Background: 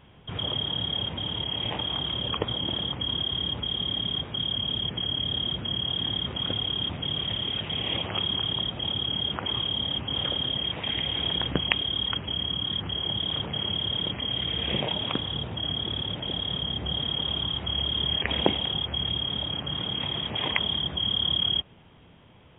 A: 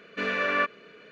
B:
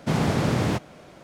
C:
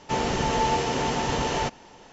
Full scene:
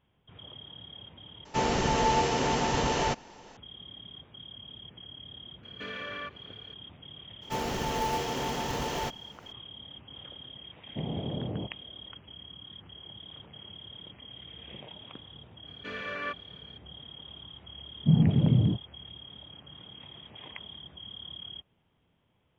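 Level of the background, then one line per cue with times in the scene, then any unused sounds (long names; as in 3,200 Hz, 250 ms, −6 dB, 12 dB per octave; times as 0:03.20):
background −18 dB
0:01.45: overwrite with C −1.5 dB
0:05.63: mix in A −7 dB + downward compressor 4 to 1, threshold −29 dBFS
0:07.41: mix in C −6.5 dB, fades 0.02 s + floating-point word with a short mantissa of 2 bits
0:10.89: mix in B −11 dB + inverse Chebyshev low-pass filter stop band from 3,400 Hz, stop band 70 dB
0:15.67: mix in A −10 dB
0:17.99: mix in B −0.5 dB + every bin expanded away from the loudest bin 2.5 to 1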